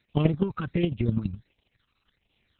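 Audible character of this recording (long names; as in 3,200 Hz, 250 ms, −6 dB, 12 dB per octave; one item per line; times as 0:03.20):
a quantiser's noise floor 10 bits, dither triangular
chopped level 12 Hz, depth 60%, duty 15%
phaser sweep stages 12, 1.4 Hz, lowest notch 560–1,500 Hz
Opus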